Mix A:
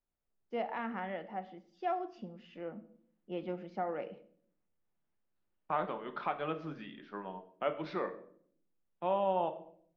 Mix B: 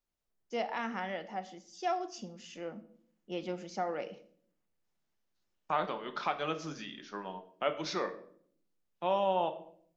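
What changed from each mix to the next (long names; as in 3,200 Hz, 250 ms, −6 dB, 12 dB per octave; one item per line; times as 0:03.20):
master: remove high-frequency loss of the air 440 metres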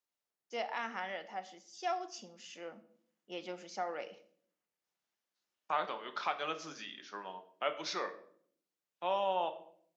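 master: add high-pass filter 710 Hz 6 dB per octave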